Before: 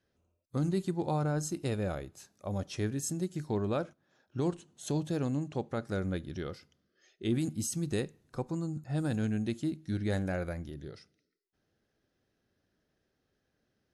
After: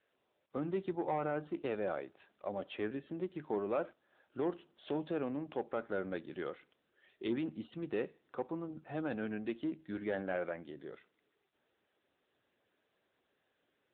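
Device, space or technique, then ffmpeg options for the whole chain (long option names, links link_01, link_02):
telephone: -af "highpass=370,lowpass=3500,asoftclip=type=tanh:threshold=-27.5dB,volume=2.5dB" -ar 8000 -c:a libopencore_amrnb -b:a 10200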